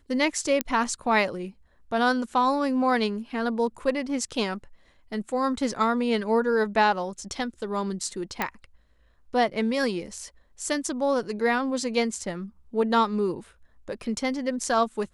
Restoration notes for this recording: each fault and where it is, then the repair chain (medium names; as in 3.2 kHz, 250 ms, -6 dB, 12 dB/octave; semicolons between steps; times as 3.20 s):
0.61 s: pop -7 dBFS
8.42 s: pop -11 dBFS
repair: de-click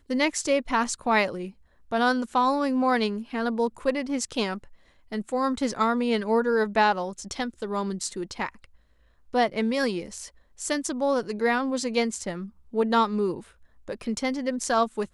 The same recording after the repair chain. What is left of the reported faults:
8.42 s: pop